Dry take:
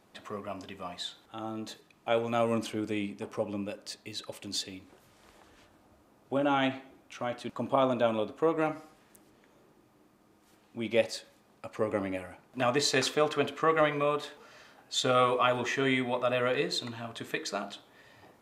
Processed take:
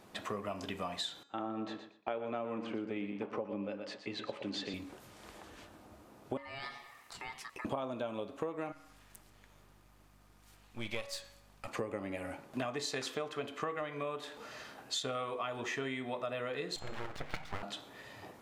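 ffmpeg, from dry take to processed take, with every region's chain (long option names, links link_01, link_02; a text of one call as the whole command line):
ffmpeg -i in.wav -filter_complex "[0:a]asettb=1/sr,asplit=3[link_01][link_02][link_03];[link_01]atrim=end=1.234[link_04];[link_02]atrim=start=1.23:end=4.74,asetpts=PTS-STARTPTS,afade=type=in:duration=0.004:curve=qsin,afade=type=out:start_time=3.506:duration=0.004:curve=qsin,agate=range=-33dB:threshold=-52dB:ratio=3:release=100:detection=peak,highpass=170,lowpass=2300,aecho=1:1:119|238|357:0.316|0.0696|0.0153,atrim=end_sample=154791[link_05];[link_03]atrim=start=4.736[link_06];[link_04][link_05]acrossfade=duration=0.004:curve1=hsin:curve2=qsin[link_07];[link_07][link_06]acrossfade=duration=0.004:curve1=qsin:curve2=hsin,asettb=1/sr,asplit=3[link_08][link_09][link_10];[link_08]atrim=end=6.374[link_11];[link_09]atrim=start=6.37:end=7.65,asetpts=PTS-STARTPTS,afade=type=in:duration=0.004:curve=qsin,afade=type=out:start_time=1.276:duration=0.004:curve=qsin,bass=frequency=250:gain=-5,treble=frequency=4000:gain=8,acompressor=threshold=-54dB:ratio=2:attack=3.2:release=140:knee=1:detection=peak,aeval=exprs='val(0)*sin(2*PI*1500*n/s)':channel_layout=same[link_12];[link_10]atrim=start=7.646[link_13];[link_11][link_12]acrossfade=duration=0.004:curve1=hsin:curve2=qsin[link_14];[link_14][link_13]acrossfade=duration=0.004:curve1=qsin:curve2=hsin,asettb=1/sr,asplit=3[link_15][link_16][link_17];[link_15]atrim=end=8.724[link_18];[link_16]atrim=start=8.72:end=11.68,asetpts=PTS-STARTPTS,afade=type=in:duration=0.004:curve=qsin,afade=type=out:start_time=2.956:duration=0.004:curve=qsin,aeval=exprs='if(lt(val(0),0),0.447*val(0),val(0))':channel_layout=same,equalizer=frequency=300:width=0.54:gain=-12,aeval=exprs='val(0)+0.000355*(sin(2*PI*50*n/s)+sin(2*PI*2*50*n/s)/2+sin(2*PI*3*50*n/s)/3+sin(2*PI*4*50*n/s)/4+sin(2*PI*5*50*n/s)/5)':channel_layout=same[link_19];[link_17]atrim=start=11.676[link_20];[link_18][link_19]acrossfade=duration=0.004:curve1=hsin:curve2=qsin[link_21];[link_21][link_20]acrossfade=duration=0.004:curve1=qsin:curve2=hsin,asettb=1/sr,asplit=3[link_22][link_23][link_24];[link_22]atrim=end=16.764[link_25];[link_23]atrim=start=16.76:end=17.63,asetpts=PTS-STARTPTS,afade=type=in:duration=0.004:curve=qsin,afade=type=out:start_time=0.866:duration=0.004:curve=qsin,lowpass=frequency=2400:width=0.5412,lowpass=frequency=2400:width=1.3066,acompressor=mode=upward:threshold=-42dB:ratio=2.5:attack=3.2:release=140:knee=2.83:detection=peak,aeval=exprs='abs(val(0))':channel_layout=same[link_26];[link_24]atrim=start=17.626[link_27];[link_25][link_26]acrossfade=duration=0.004:curve1=hsin:curve2=qsin[link_28];[link_28][link_27]acrossfade=duration=0.004:curve1=qsin:curve2=hsin,bandreject=frequency=280.7:width_type=h:width=4,bandreject=frequency=561.4:width_type=h:width=4,bandreject=frequency=842.1:width_type=h:width=4,bandreject=frequency=1122.8:width_type=h:width=4,bandreject=frequency=1403.5:width_type=h:width=4,bandreject=frequency=1684.2:width_type=h:width=4,bandreject=frequency=1964.9:width_type=h:width=4,bandreject=frequency=2245.6:width_type=h:width=4,bandreject=frequency=2526.3:width_type=h:width=4,bandreject=frequency=2807:width_type=h:width=4,bandreject=frequency=3087.7:width_type=h:width=4,bandreject=frequency=3368.4:width_type=h:width=4,bandreject=frequency=3649.1:width_type=h:width=4,bandreject=frequency=3929.8:width_type=h:width=4,bandreject=frequency=4210.5:width_type=h:width=4,bandreject=frequency=4491.2:width_type=h:width=4,bandreject=frequency=4771.9:width_type=h:width=4,bandreject=frequency=5052.6:width_type=h:width=4,bandreject=frequency=5333.3:width_type=h:width=4,bandreject=frequency=5614:width_type=h:width=4,bandreject=frequency=5894.7:width_type=h:width=4,bandreject=frequency=6175.4:width_type=h:width=4,bandreject=frequency=6456.1:width_type=h:width=4,bandreject=frequency=6736.8:width_type=h:width=4,bandreject=frequency=7017.5:width_type=h:width=4,bandreject=frequency=7298.2:width_type=h:width=4,bandreject=frequency=7578.9:width_type=h:width=4,bandreject=frequency=7859.6:width_type=h:width=4,bandreject=frequency=8140.3:width_type=h:width=4,acompressor=threshold=-40dB:ratio=12,volume=5.5dB" out.wav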